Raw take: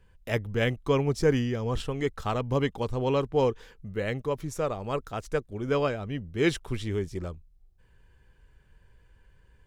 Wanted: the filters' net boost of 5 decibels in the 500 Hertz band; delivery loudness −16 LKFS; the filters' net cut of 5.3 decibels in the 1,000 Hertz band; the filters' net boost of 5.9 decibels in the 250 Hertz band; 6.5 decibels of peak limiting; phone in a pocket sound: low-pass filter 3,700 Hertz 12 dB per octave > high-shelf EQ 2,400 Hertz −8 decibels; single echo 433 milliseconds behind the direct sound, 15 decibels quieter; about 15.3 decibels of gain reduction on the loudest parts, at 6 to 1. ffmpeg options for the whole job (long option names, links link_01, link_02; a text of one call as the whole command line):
ffmpeg -i in.wav -af "equalizer=frequency=250:width_type=o:gain=6,equalizer=frequency=500:width_type=o:gain=6,equalizer=frequency=1000:width_type=o:gain=-8,acompressor=threshold=-31dB:ratio=6,alimiter=level_in=2.5dB:limit=-24dB:level=0:latency=1,volume=-2.5dB,lowpass=3700,highshelf=frequency=2400:gain=-8,aecho=1:1:433:0.178,volume=21dB" out.wav